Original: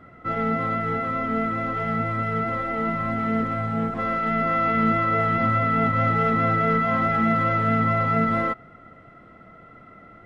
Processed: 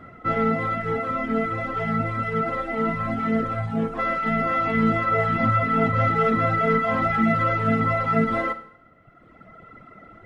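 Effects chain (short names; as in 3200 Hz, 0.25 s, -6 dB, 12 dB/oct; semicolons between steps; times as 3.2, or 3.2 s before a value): reverb removal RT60 1.7 s; Schroeder reverb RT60 0.69 s, DRR 11.5 dB; gain +4 dB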